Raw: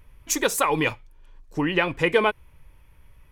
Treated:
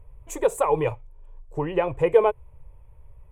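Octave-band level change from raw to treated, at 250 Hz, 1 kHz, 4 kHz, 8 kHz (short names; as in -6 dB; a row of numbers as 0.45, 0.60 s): -5.5 dB, -1.0 dB, under -15 dB, under -10 dB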